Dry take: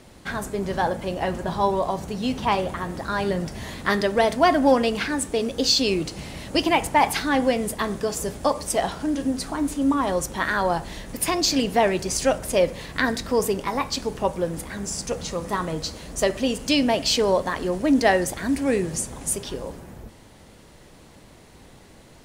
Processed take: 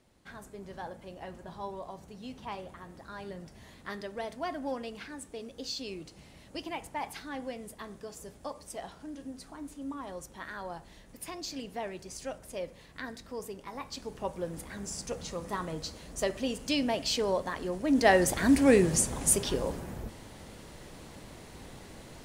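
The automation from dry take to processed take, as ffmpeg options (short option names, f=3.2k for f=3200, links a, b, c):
-af "volume=1dB,afade=t=in:st=13.59:d=1.11:silence=0.354813,afade=t=in:st=17.86:d=0.56:silence=0.316228"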